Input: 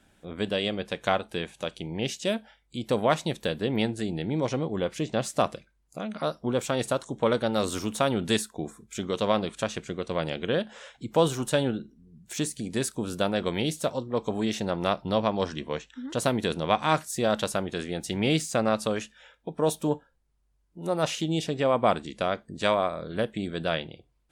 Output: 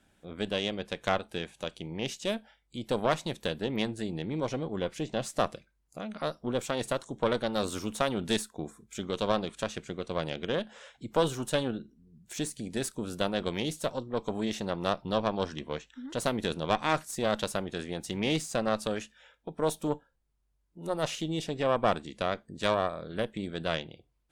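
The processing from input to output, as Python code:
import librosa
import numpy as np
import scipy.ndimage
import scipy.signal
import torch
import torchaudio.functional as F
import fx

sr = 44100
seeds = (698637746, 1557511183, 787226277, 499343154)

y = fx.tube_stage(x, sr, drive_db=15.0, bias=0.75)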